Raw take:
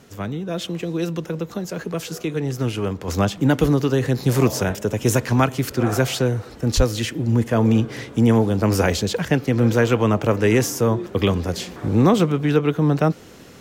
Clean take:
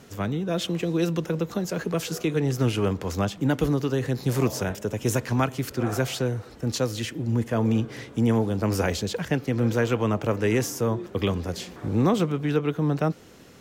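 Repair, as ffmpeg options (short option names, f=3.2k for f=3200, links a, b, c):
-filter_complex "[0:a]asplit=3[a][b][c];[a]afade=t=out:st=6.76:d=0.02[d];[b]highpass=f=140:w=0.5412,highpass=f=140:w=1.3066,afade=t=in:st=6.76:d=0.02,afade=t=out:st=6.88:d=0.02[e];[c]afade=t=in:st=6.88:d=0.02[f];[d][e][f]amix=inputs=3:normalize=0,asetnsamples=n=441:p=0,asendcmd='3.08 volume volume -6dB',volume=0dB"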